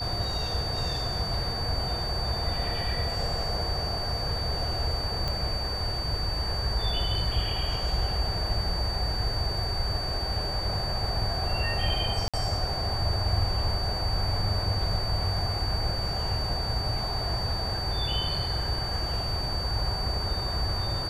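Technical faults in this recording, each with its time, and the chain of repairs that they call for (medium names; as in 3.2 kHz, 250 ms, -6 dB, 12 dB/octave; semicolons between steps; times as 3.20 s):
whine 4.6 kHz -32 dBFS
5.28 s: pop -18 dBFS
12.28–12.34 s: dropout 56 ms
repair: de-click; band-stop 4.6 kHz, Q 30; interpolate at 12.28 s, 56 ms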